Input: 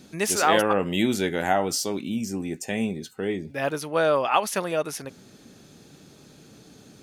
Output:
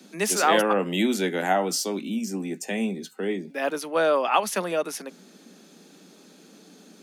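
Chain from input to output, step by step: steep high-pass 170 Hz 96 dB/oct

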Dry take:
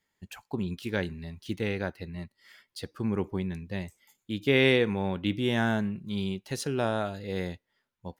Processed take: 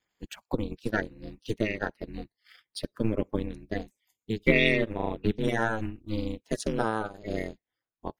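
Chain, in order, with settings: bin magnitudes rounded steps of 30 dB; transient shaper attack +6 dB, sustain -11 dB; ring modulator 110 Hz; gain +2.5 dB

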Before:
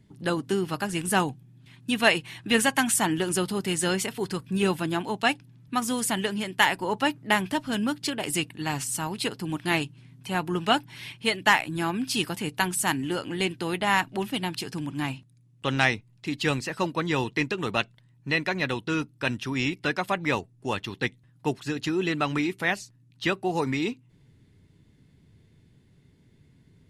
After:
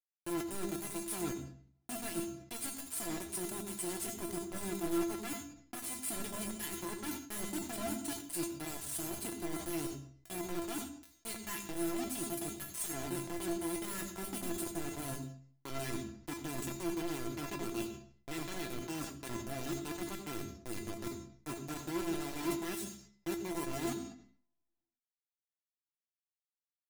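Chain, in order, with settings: EQ curve 330 Hz 0 dB, 630 Hz -20 dB, 4700 Hz -13 dB, 9000 Hz +8 dB; reverse; compressor 12:1, threshold -36 dBFS, peak gain reduction 23 dB; reverse; requantised 6-bit, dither none; resonator 340 Hz, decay 0.18 s, harmonics all, mix 90%; on a send at -9.5 dB: reverb RT60 0.45 s, pre-delay 74 ms; on the sum: sustainer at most 89 dB/s; gain +9 dB

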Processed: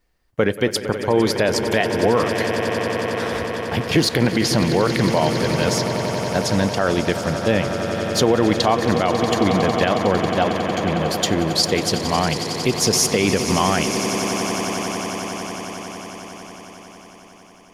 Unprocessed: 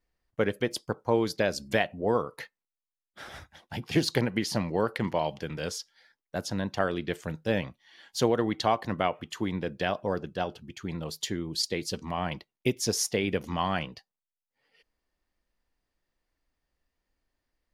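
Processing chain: on a send: swelling echo 91 ms, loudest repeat 8, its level -15 dB; on the sum: maximiser +16.5 dB; gain -5 dB

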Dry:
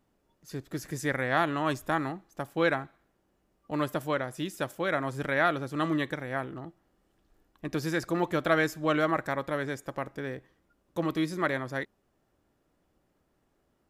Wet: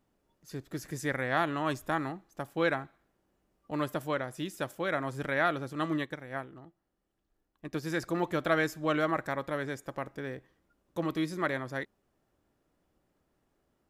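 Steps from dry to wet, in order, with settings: 5.73–7.9 upward expander 1.5:1, over -44 dBFS; gain -2.5 dB

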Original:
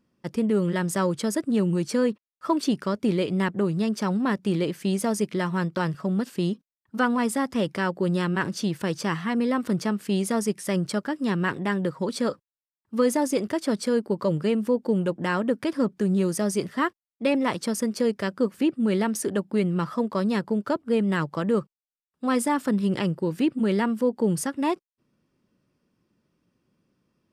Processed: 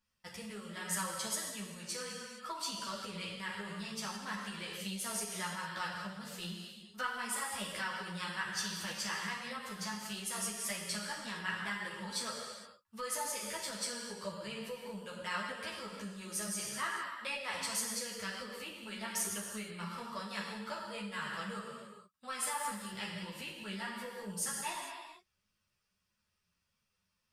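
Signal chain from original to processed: non-linear reverb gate 0.49 s falling, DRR -1.5 dB; compressor, threshold -20 dBFS, peak gain reduction 7 dB; passive tone stack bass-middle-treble 10-0-10; ensemble effect; gain +1 dB

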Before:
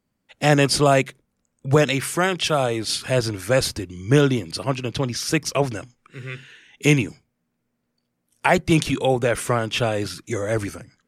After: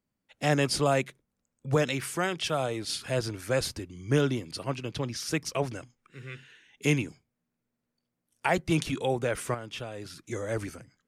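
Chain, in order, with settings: 9.54–10.32 compressor 2.5:1, threshold -30 dBFS, peak gain reduction 9.5 dB; gain -8.5 dB

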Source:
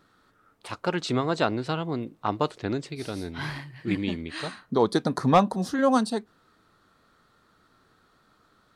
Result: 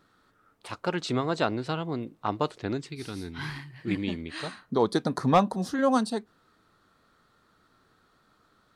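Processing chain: 2.77–3.71 bell 600 Hz -14 dB 0.5 oct; gain -2 dB

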